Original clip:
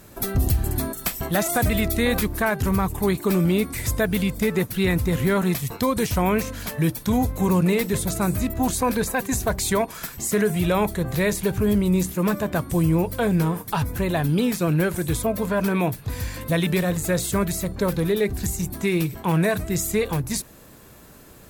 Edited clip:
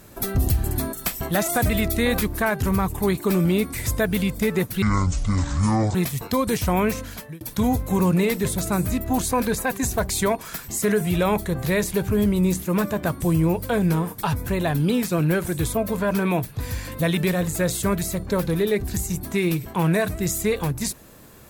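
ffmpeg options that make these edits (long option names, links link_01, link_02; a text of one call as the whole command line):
ffmpeg -i in.wav -filter_complex "[0:a]asplit=4[link_01][link_02][link_03][link_04];[link_01]atrim=end=4.824[link_05];[link_02]atrim=start=4.82:end=5.44,asetpts=PTS-STARTPTS,asetrate=24255,aresample=44100[link_06];[link_03]atrim=start=5.436:end=6.9,asetpts=PTS-STARTPTS,afade=type=out:start_time=1.044:duration=0.42[link_07];[link_04]atrim=start=6.9,asetpts=PTS-STARTPTS,afade=type=in:duration=0.004:curve=hsin[link_08];[link_05][link_06]acrossfade=duration=0.004:curve1=hsin:curve2=hsin[link_09];[link_07][link_08]concat=n=2:v=0:a=1[link_10];[link_09][link_10]acrossfade=duration=0.004:curve1=hsin:curve2=hsin" out.wav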